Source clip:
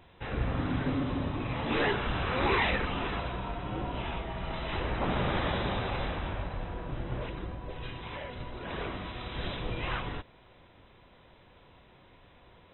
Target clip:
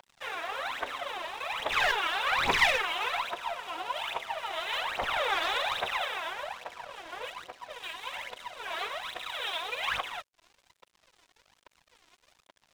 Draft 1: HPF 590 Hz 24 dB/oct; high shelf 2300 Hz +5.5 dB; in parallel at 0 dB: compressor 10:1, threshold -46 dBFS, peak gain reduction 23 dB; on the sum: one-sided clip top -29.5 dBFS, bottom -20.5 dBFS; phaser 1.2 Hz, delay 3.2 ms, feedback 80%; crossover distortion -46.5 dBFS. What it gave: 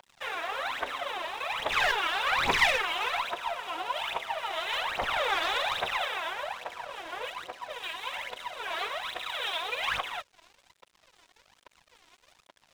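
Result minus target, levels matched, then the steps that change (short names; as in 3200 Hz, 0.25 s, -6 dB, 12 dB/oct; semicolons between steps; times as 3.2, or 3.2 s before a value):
compressor: peak gain reduction -11 dB
change: compressor 10:1, threshold -58 dBFS, peak gain reduction 33.5 dB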